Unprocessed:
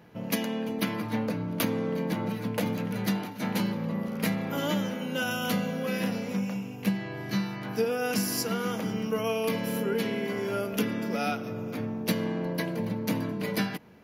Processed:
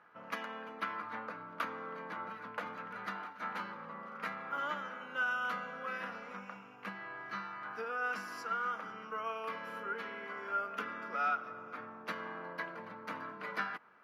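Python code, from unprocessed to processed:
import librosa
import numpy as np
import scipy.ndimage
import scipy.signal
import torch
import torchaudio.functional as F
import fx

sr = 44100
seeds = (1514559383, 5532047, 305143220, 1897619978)

y = fx.rider(x, sr, range_db=10, speed_s=2.0)
y = fx.bandpass_q(y, sr, hz=1300.0, q=4.4)
y = y * librosa.db_to_amplitude(5.0)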